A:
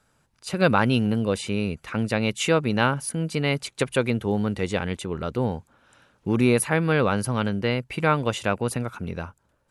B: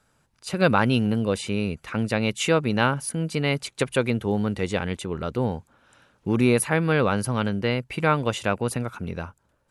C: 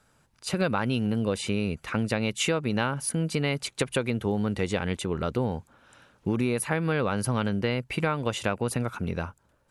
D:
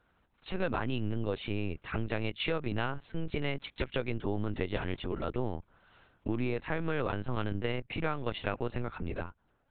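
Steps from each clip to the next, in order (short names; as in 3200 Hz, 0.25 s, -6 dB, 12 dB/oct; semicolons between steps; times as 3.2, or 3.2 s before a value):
nothing audible
compressor, threshold -24 dBFS, peak gain reduction 10 dB; gain +1.5 dB
LPC vocoder at 8 kHz pitch kept; gain -5.5 dB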